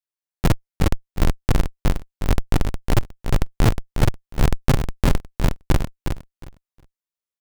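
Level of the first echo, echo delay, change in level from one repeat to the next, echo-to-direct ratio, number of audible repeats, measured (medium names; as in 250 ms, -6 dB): -7.0 dB, 361 ms, -15.0 dB, -7.0 dB, 2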